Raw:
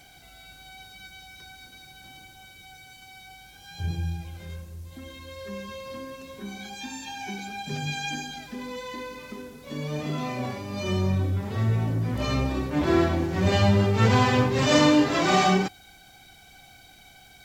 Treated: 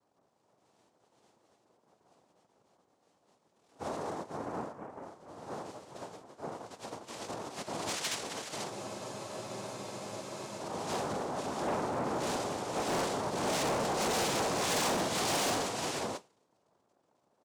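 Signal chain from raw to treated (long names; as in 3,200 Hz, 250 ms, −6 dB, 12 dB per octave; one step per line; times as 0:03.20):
parametric band 3,200 Hz +12.5 dB 0.23 octaves
low-pass that shuts in the quiet parts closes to 360 Hz, open at −18.5 dBFS
slap from a distant wall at 84 metres, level −6 dB
convolution reverb, pre-delay 35 ms, DRR 12 dB
cochlear-implant simulation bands 2
hard clipping −20 dBFS, distortion −8 dB
bass and treble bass −4 dB, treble −1 dB
brickwall limiter −26 dBFS, peak gain reduction 8 dB
frozen spectrum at 0:08.72, 1.89 s
expander for the loud parts 1.5 to 1, over −53 dBFS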